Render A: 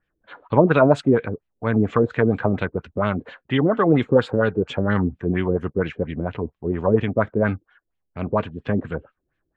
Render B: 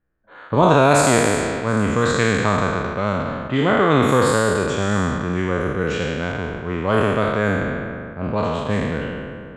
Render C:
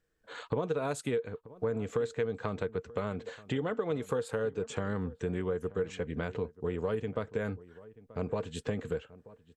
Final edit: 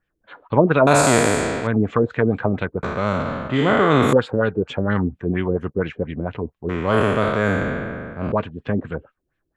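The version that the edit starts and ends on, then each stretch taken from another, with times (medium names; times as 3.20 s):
A
0.87–1.67 s: from B
2.83–4.13 s: from B
6.69–8.32 s: from B
not used: C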